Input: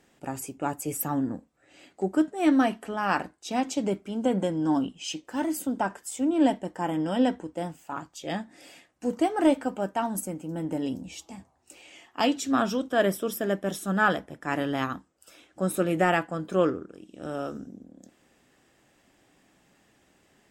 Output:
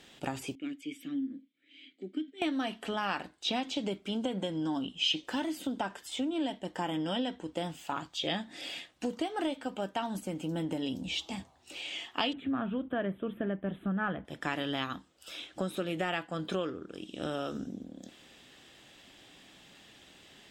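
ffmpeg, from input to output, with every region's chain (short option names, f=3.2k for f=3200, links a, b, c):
-filter_complex "[0:a]asettb=1/sr,asplit=3[a][b][c];[a]atrim=end=0.554[d];[b]atrim=start=0.55:end=2.42,asetpts=PTS-STARTPTS,afade=t=in:d=0.004:c=qsin,afade=t=out:st=1.866:d=0.004:c=qsin,asplit=3[e][f][g];[e]bandpass=f=270:t=q:w=8,volume=0dB[h];[f]bandpass=f=2.29k:t=q:w=8,volume=-6dB[i];[g]bandpass=f=3.01k:t=q:w=8,volume=-9dB[j];[h][i][j]amix=inputs=3:normalize=0,lowshelf=f=220:g=-6.5[k];[c]atrim=start=2.416[l];[d][k]acrossfade=d=0.004:c1=hsin:c2=qsin[m];[m][l]acrossfade=d=0.004:c1=qsin:c2=hsin,asettb=1/sr,asplit=3[n][o][p];[n]atrim=end=12.334[q];[o]atrim=start=12.33:end=14.25,asetpts=PTS-STARTPTS,afade=t=in:d=0.004:c=qsin,afade=t=out:st=1.916:d=0.004:c=qsin,acrossover=split=4100[r][s];[s]acompressor=threshold=-52dB:ratio=4:attack=1:release=60[t];[r][t]amix=inputs=2:normalize=0,asuperstop=centerf=5300:order=4:qfactor=0.67,bass=f=250:g=10,treble=f=4k:g=-14[u];[p]atrim=start=14.246[v];[q][u]acrossfade=d=0.004:c1=hsin:c2=qsin[w];[w][v]acrossfade=d=0.004:c1=qsin:c2=hsin,acompressor=threshold=-35dB:ratio=6,equalizer=f=3.5k:t=o:w=0.98:g=13.5,acrossover=split=4100[x][y];[y]acompressor=threshold=-51dB:ratio=4:attack=1:release=60[z];[x][z]amix=inputs=2:normalize=0,volume=3.5dB"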